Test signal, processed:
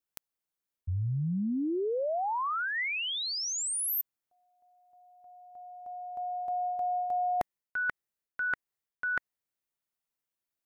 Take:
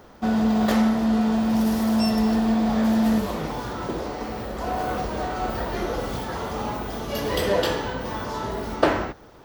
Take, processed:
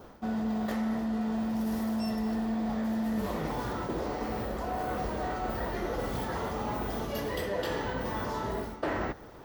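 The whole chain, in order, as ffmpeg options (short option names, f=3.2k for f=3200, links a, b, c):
-af "adynamicequalizer=threshold=0.00398:dfrequency=1900:dqfactor=7.4:tfrequency=1900:tqfactor=7.4:attack=5:release=100:ratio=0.375:range=3:mode=boostabove:tftype=bell,areverse,acompressor=threshold=-29dB:ratio=6,areverse,crystalizer=i=1.5:c=0,highshelf=f=3k:g=-11"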